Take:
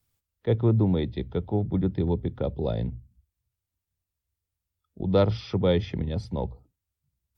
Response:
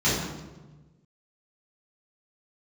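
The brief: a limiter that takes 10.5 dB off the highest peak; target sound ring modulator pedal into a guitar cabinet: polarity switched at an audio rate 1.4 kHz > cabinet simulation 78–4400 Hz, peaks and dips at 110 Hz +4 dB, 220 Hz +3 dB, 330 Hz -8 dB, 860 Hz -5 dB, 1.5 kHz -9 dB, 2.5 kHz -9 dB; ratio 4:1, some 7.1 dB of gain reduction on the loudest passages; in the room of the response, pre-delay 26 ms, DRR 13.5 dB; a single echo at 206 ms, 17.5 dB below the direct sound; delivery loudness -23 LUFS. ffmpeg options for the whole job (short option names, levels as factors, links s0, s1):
-filter_complex "[0:a]acompressor=threshold=0.0562:ratio=4,alimiter=level_in=1.33:limit=0.0631:level=0:latency=1,volume=0.75,aecho=1:1:206:0.133,asplit=2[s0][s1];[1:a]atrim=start_sample=2205,adelay=26[s2];[s1][s2]afir=irnorm=-1:irlink=0,volume=0.0355[s3];[s0][s3]amix=inputs=2:normalize=0,aeval=exprs='val(0)*sgn(sin(2*PI*1400*n/s))':c=same,highpass=78,equalizer=f=110:t=q:w=4:g=4,equalizer=f=220:t=q:w=4:g=3,equalizer=f=330:t=q:w=4:g=-8,equalizer=f=860:t=q:w=4:g=-5,equalizer=f=1500:t=q:w=4:g=-9,equalizer=f=2500:t=q:w=4:g=-9,lowpass=f=4400:w=0.5412,lowpass=f=4400:w=1.3066,volume=5.96"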